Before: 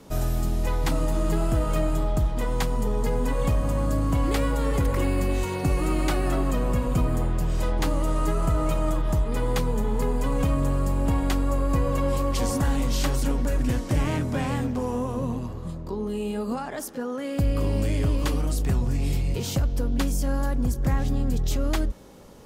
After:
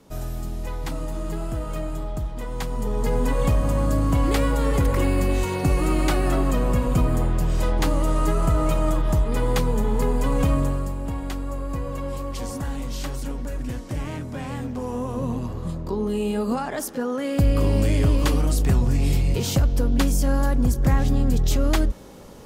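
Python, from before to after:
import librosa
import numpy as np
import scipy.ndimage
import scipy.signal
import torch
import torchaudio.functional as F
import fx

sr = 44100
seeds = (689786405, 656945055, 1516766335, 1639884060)

y = fx.gain(x, sr, db=fx.line((2.49, -5.0), (3.16, 3.0), (10.57, 3.0), (10.98, -5.5), (14.36, -5.5), (15.63, 4.5)))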